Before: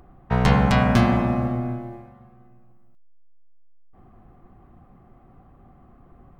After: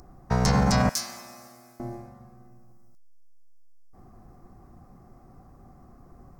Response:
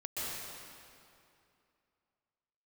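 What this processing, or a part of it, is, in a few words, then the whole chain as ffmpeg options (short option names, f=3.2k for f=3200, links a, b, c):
over-bright horn tweeter: -filter_complex "[0:a]asettb=1/sr,asplit=3[a][b][c];[a]atrim=end=0.894[d];[b]atrim=start=0.89:end=1.8,asetpts=PTS-STARTPTS,afade=t=in:d=0.004:c=qsin,afade=t=out:st=0.906:d=0.004:c=qsin,aderivative[e];[c]atrim=start=1.796[f];[d][e]acrossfade=d=0.004:c1=hsin:c2=qsin[g];[g][f]acrossfade=d=0.004:c1=qsin:c2=hsin,highshelf=f=4.1k:t=q:w=3:g=10,alimiter=limit=-12dB:level=0:latency=1:release=26"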